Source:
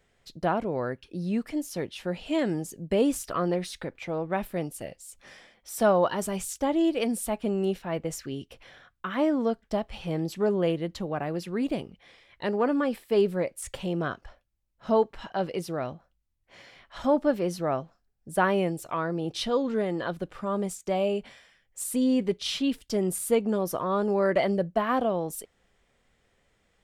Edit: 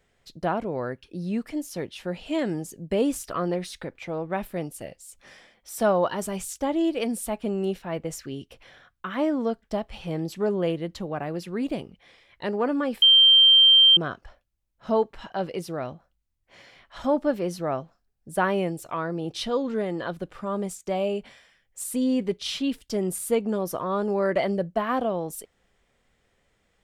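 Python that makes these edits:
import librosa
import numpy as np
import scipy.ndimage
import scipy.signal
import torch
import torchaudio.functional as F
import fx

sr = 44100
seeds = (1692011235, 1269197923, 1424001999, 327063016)

y = fx.edit(x, sr, fx.bleep(start_s=13.02, length_s=0.95, hz=3150.0, db=-11.5), tone=tone)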